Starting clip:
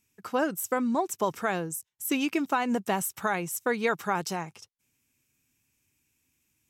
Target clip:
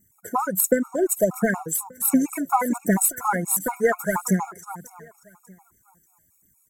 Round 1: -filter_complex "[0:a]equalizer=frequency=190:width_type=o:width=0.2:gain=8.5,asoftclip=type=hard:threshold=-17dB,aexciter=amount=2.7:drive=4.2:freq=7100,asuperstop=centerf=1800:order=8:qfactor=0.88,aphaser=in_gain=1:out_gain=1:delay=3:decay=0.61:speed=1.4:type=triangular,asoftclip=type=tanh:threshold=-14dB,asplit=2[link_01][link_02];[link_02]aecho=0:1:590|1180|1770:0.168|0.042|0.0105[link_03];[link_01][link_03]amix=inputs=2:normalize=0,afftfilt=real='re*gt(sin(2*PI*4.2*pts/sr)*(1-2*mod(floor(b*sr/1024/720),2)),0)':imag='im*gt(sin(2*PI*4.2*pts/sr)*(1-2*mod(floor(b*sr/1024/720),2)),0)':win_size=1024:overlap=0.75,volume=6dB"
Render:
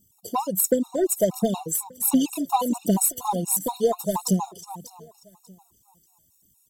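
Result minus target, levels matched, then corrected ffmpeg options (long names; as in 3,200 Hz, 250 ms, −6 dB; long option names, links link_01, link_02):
2,000 Hz band −18.0 dB; soft clipping: distortion +18 dB
-filter_complex "[0:a]equalizer=frequency=190:width_type=o:width=0.2:gain=8.5,asoftclip=type=hard:threshold=-17dB,aexciter=amount=2.7:drive=4.2:freq=7100,asuperstop=centerf=3600:order=8:qfactor=0.88,aphaser=in_gain=1:out_gain=1:delay=3:decay=0.61:speed=1.4:type=triangular,asoftclip=type=tanh:threshold=-3.5dB,asplit=2[link_01][link_02];[link_02]aecho=0:1:590|1180|1770:0.168|0.042|0.0105[link_03];[link_01][link_03]amix=inputs=2:normalize=0,afftfilt=real='re*gt(sin(2*PI*4.2*pts/sr)*(1-2*mod(floor(b*sr/1024/720),2)),0)':imag='im*gt(sin(2*PI*4.2*pts/sr)*(1-2*mod(floor(b*sr/1024/720),2)),0)':win_size=1024:overlap=0.75,volume=6dB"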